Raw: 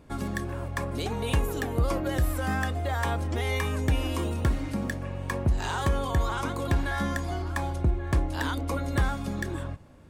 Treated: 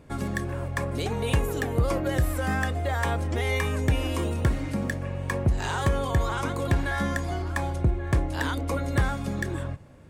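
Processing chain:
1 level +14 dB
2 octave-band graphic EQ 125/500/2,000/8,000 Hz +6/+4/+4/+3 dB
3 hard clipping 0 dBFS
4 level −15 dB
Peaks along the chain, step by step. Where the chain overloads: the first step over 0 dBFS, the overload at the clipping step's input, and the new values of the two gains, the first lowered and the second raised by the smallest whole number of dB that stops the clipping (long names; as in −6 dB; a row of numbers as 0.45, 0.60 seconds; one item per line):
−2.5, +3.0, 0.0, −15.0 dBFS
step 2, 3.0 dB
step 1 +11 dB, step 4 −12 dB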